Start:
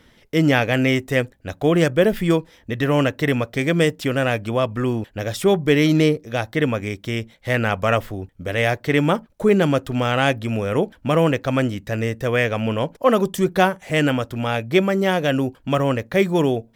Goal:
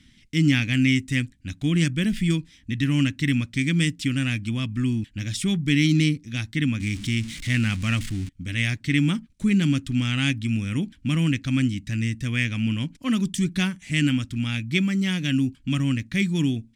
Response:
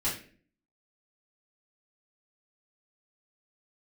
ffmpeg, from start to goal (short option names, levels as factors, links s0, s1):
-filter_complex "[0:a]asettb=1/sr,asplit=3[s0][s1][s2];[s0]atrim=end=6.804[s3];[s1]atrim=start=6.8:end=8.29,asetpts=PTS-STARTPTS,afade=t=in:d=0.004:c=qsin,afade=t=out:st=1.486:d=0.004:c=qsin,aeval=exprs='val(0)+0.5*0.0355*sgn(val(0))':c=same[s4];[s2]atrim=start=8.286[s5];[s3][s4]acrossfade=d=0.004:c1=hsin:c2=qsin[s6];[s6][s5]acrossfade=d=0.004:c1=qsin:c2=hsin,firequalizer=gain_entry='entry(280,0);entry(430,-25);entry(620,-27);entry(1100,-17);entry(2200,-1);entry(8800,2);entry(13000,-14)':delay=0.05:min_phase=1"